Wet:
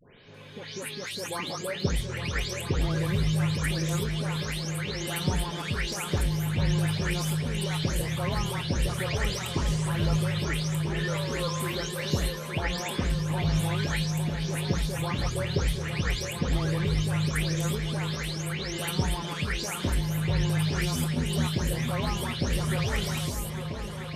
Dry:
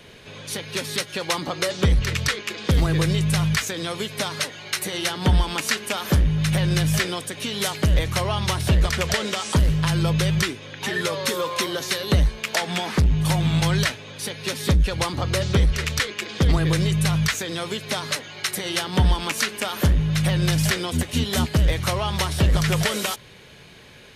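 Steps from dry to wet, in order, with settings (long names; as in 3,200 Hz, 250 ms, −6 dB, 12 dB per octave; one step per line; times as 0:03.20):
every frequency bin delayed by itself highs late, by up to 341 ms
pitch vibrato 1.8 Hz 9.1 cents
echo whose low-pass opens from repeat to repeat 430 ms, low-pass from 200 Hz, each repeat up 2 octaves, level −3 dB
level −7 dB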